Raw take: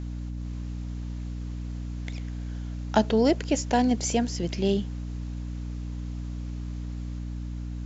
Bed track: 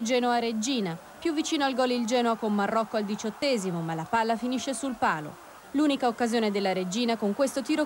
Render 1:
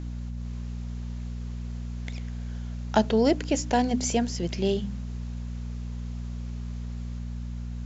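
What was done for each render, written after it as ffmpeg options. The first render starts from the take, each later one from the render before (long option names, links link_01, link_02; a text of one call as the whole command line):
ffmpeg -i in.wav -af "bandreject=frequency=50:width_type=h:width=4,bandreject=frequency=100:width_type=h:width=4,bandreject=frequency=150:width_type=h:width=4,bandreject=frequency=200:width_type=h:width=4,bandreject=frequency=250:width_type=h:width=4,bandreject=frequency=300:width_type=h:width=4" out.wav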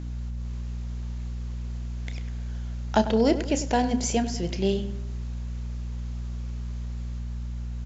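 ffmpeg -i in.wav -filter_complex "[0:a]asplit=2[link_01][link_02];[link_02]adelay=31,volume=-13dB[link_03];[link_01][link_03]amix=inputs=2:normalize=0,asplit=2[link_04][link_05];[link_05]adelay=98,lowpass=frequency=2400:poles=1,volume=-12dB,asplit=2[link_06][link_07];[link_07]adelay=98,lowpass=frequency=2400:poles=1,volume=0.49,asplit=2[link_08][link_09];[link_09]adelay=98,lowpass=frequency=2400:poles=1,volume=0.49,asplit=2[link_10][link_11];[link_11]adelay=98,lowpass=frequency=2400:poles=1,volume=0.49,asplit=2[link_12][link_13];[link_13]adelay=98,lowpass=frequency=2400:poles=1,volume=0.49[link_14];[link_04][link_06][link_08][link_10][link_12][link_14]amix=inputs=6:normalize=0" out.wav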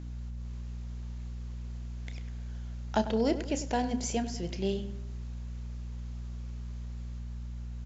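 ffmpeg -i in.wav -af "volume=-6.5dB" out.wav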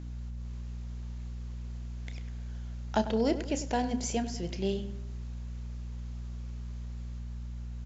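ffmpeg -i in.wav -af anull out.wav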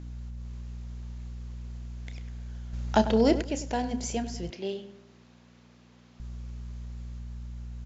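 ffmpeg -i in.wav -filter_complex "[0:a]asettb=1/sr,asplit=3[link_01][link_02][link_03];[link_01]atrim=end=2.734[link_04];[link_02]atrim=start=2.73:end=3.42,asetpts=PTS-STARTPTS,afade=type=in:duration=0.004:curve=qsin,afade=type=out:start_time=0.686:duration=0.004:curve=qsin,acontrast=44[link_05];[link_03]atrim=start=3.416[link_06];[link_04][link_05]acrossfade=duration=0.004:curve1=hsin:curve2=qsin[link_07];[link_07][link_06]acrossfade=duration=0.004:curve1=qsin:curve2=hsin,asettb=1/sr,asplit=3[link_08][link_09][link_10];[link_08]atrim=end=4.504[link_11];[link_09]atrim=start=4.5:end=6.2,asetpts=PTS-STARTPTS,afade=type=in:duration=0.004:curve=qsin,afade=type=out:start_time=1.696:duration=0.004:curve=qsin,highpass=280,lowpass=5200[link_12];[link_10]atrim=start=6.196[link_13];[link_11][link_12]acrossfade=duration=0.004:curve1=hsin:curve2=qsin[link_14];[link_14][link_13]acrossfade=duration=0.004:curve1=qsin:curve2=hsin" out.wav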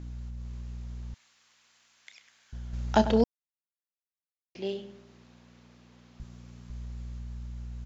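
ffmpeg -i in.wav -filter_complex "[0:a]asettb=1/sr,asplit=3[link_01][link_02][link_03];[link_01]atrim=end=1.144[link_04];[link_02]atrim=start=1.14:end=2.53,asetpts=PTS-STARTPTS,afade=type=in:duration=0.004:curve=qsin,afade=type=out:start_time=1.386:duration=0.004:curve=qsin,highpass=1400[link_05];[link_03]atrim=start=2.526[link_06];[link_04][link_05]acrossfade=duration=0.004:curve1=hsin:curve2=qsin[link_07];[link_07][link_06]acrossfade=duration=0.004:curve1=qsin:curve2=hsin,asettb=1/sr,asplit=3[link_08][link_09][link_10];[link_08]atrim=end=6.234[link_11];[link_09]atrim=start=6.23:end=6.7,asetpts=PTS-STARTPTS,afade=type=in:duration=0.004:curve=qsin,afade=type=out:start_time=0.466:duration=0.004:curve=qsin,highpass=130[link_12];[link_10]atrim=start=6.696[link_13];[link_11][link_12]acrossfade=duration=0.004:curve1=hsin:curve2=qsin[link_14];[link_14][link_13]acrossfade=duration=0.004:curve1=qsin:curve2=hsin,asplit=3[link_15][link_16][link_17];[link_15]atrim=end=3.24,asetpts=PTS-STARTPTS,afade=type=out:start_time=3.236:duration=0.004:curve=hsin[link_18];[link_16]atrim=start=3.24:end=4.55,asetpts=PTS-STARTPTS,volume=0[link_19];[link_17]atrim=start=4.55,asetpts=PTS-STARTPTS,afade=type=in:duration=0.004:curve=hsin[link_20];[link_18][link_19][link_20]concat=n=3:v=0:a=1" out.wav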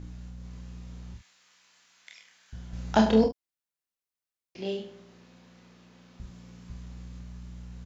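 ffmpeg -i in.wav -filter_complex "[0:a]asplit=2[link_01][link_02];[link_02]adelay=46,volume=-8.5dB[link_03];[link_01][link_03]amix=inputs=2:normalize=0,aecho=1:1:27|38:0.668|0.188" out.wav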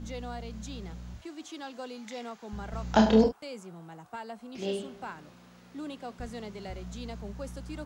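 ffmpeg -i in.wav -i bed.wav -filter_complex "[1:a]volume=-15.5dB[link_01];[0:a][link_01]amix=inputs=2:normalize=0" out.wav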